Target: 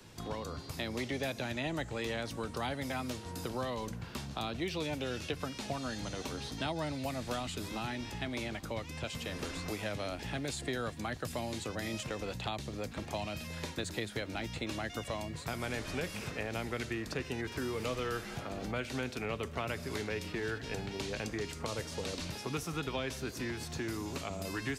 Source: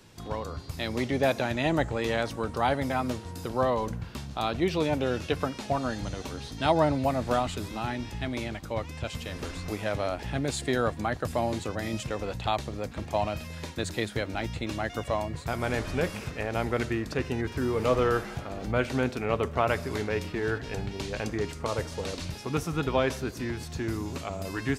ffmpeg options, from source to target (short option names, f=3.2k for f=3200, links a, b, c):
-filter_complex "[0:a]acrossover=split=130|350|2000[a][b][c][d];[a]acompressor=threshold=-48dB:ratio=4[e];[b]acompressor=threshold=-42dB:ratio=4[f];[c]acompressor=threshold=-41dB:ratio=4[g];[d]acompressor=threshold=-40dB:ratio=4[h];[e][f][g][h]amix=inputs=4:normalize=0"